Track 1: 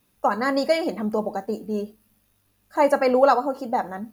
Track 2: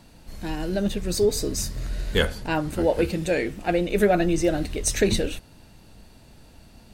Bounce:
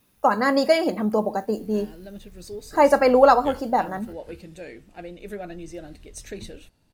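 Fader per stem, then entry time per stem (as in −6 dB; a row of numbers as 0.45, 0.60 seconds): +2.5, −15.5 decibels; 0.00, 1.30 seconds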